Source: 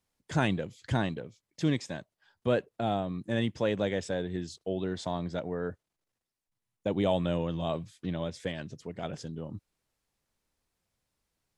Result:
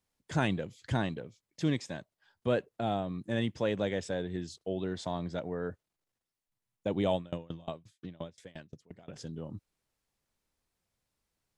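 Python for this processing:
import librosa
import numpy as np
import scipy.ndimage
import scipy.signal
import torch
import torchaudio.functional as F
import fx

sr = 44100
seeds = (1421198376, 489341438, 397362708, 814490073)

y = fx.tremolo_decay(x, sr, direction='decaying', hz=5.7, depth_db=27, at=(7.15, 9.16))
y = y * 10.0 ** (-2.0 / 20.0)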